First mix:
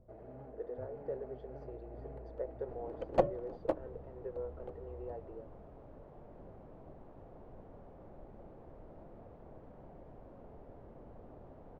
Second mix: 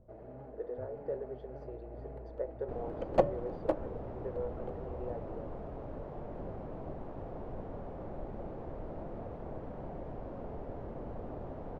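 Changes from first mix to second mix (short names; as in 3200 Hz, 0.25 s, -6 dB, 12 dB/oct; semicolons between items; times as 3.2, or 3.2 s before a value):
second sound +11.0 dB; reverb: on, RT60 0.35 s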